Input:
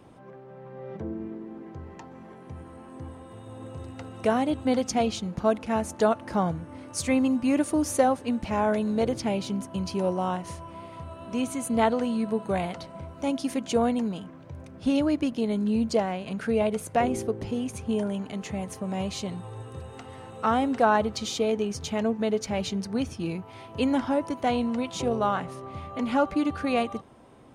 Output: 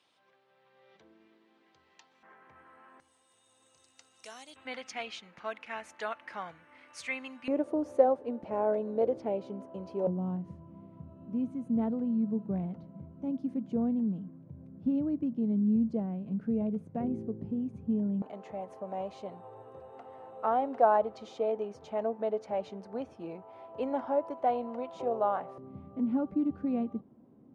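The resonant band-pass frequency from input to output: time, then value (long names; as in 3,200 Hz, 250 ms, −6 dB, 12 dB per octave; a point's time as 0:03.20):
resonant band-pass, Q 1.9
3,900 Hz
from 0:02.23 1,600 Hz
from 0:03.00 6,200 Hz
from 0:04.56 2,100 Hz
from 0:07.48 510 Hz
from 0:10.07 190 Hz
from 0:18.22 660 Hz
from 0:25.58 220 Hz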